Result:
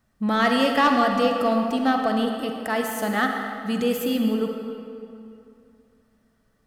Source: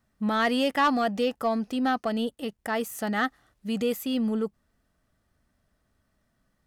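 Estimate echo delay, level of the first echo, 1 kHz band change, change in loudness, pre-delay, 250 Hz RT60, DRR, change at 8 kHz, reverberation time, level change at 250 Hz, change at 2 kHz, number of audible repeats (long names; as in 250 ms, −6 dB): no echo audible, no echo audible, +5.5 dB, +4.5 dB, 39 ms, 2.5 s, 2.5 dB, +4.0 dB, 2.6 s, +4.5 dB, +4.5 dB, no echo audible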